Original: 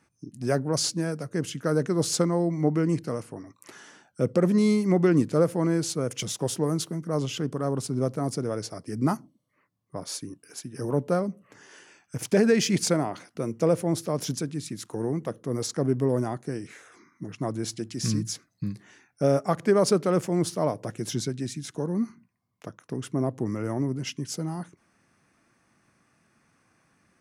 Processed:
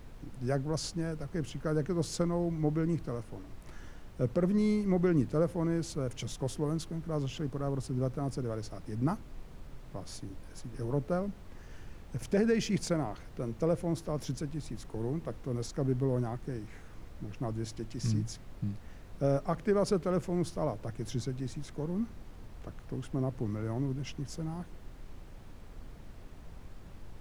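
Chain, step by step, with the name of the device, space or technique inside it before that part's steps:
car interior (parametric band 110 Hz +6 dB 0.84 octaves; high-shelf EQ 4,800 Hz −7.5 dB; brown noise bed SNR 11 dB)
level −7.5 dB

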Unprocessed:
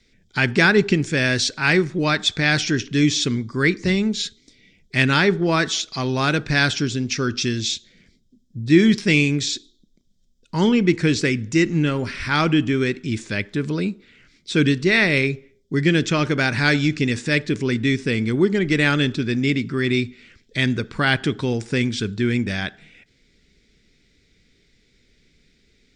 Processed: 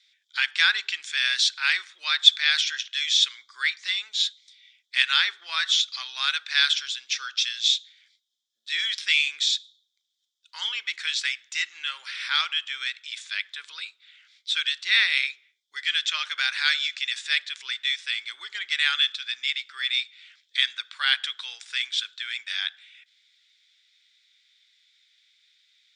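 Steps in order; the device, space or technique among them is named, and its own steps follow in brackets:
headphones lying on a table (high-pass filter 1,300 Hz 24 dB per octave; parametric band 3,500 Hz +11.5 dB 0.46 octaves)
level −4.5 dB

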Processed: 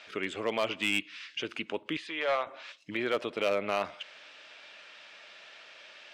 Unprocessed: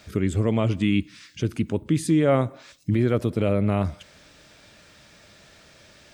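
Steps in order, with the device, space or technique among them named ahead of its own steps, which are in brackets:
megaphone (band-pass filter 660–3,900 Hz; parametric band 2,800 Hz +7 dB 0.56 octaves; hard clipping −22 dBFS, distortion −13 dB)
0:01.97–0:02.47: three-way crossover with the lows and the highs turned down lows −17 dB, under 530 Hz, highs −16 dB, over 4,200 Hz
level +1.5 dB

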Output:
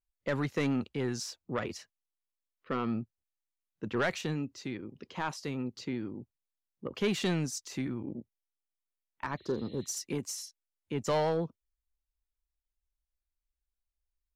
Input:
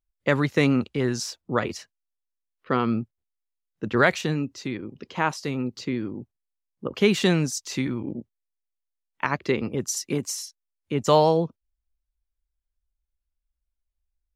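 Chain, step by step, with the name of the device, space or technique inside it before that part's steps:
saturation between pre-emphasis and de-emphasis (high-shelf EQ 6,600 Hz +9.5 dB; soft clipping −15.5 dBFS, distortion −12 dB; high-shelf EQ 6,600 Hz −9.5 dB)
0:09.40–0:09.89: healed spectral selection 1,800–4,200 Hz after
0:07.68–0:09.46: parametric band 4,000 Hz −5 dB 1.9 octaves
level −7 dB

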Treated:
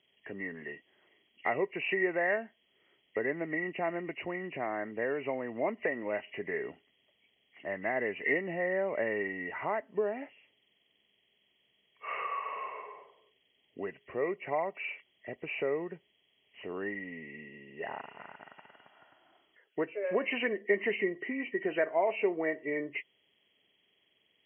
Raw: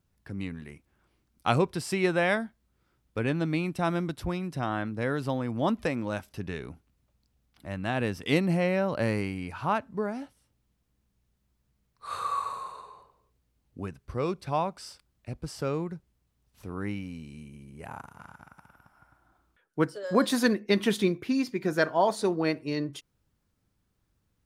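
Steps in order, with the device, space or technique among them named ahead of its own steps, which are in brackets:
hearing aid with frequency lowering (hearing-aid frequency compression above 1,800 Hz 4 to 1; downward compressor 2.5 to 1, threshold −35 dBFS, peak gain reduction 12 dB; loudspeaker in its box 290–6,900 Hz, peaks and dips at 410 Hz +9 dB, 640 Hz +8 dB, 1,400 Hz −6 dB, 1,900 Hz +9 dB, 3,300 Hz +8 dB)

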